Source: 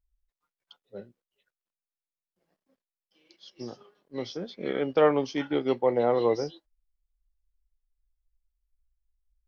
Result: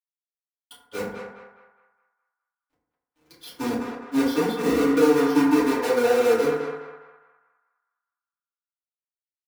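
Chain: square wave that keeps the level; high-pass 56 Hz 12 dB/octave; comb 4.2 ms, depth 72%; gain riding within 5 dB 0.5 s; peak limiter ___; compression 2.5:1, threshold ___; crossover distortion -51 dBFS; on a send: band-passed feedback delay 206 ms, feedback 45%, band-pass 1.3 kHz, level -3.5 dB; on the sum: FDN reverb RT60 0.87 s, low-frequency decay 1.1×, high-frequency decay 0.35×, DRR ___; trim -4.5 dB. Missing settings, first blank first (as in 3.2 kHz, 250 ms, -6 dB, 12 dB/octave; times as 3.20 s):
-12 dBFS, -29 dBFS, -9.5 dB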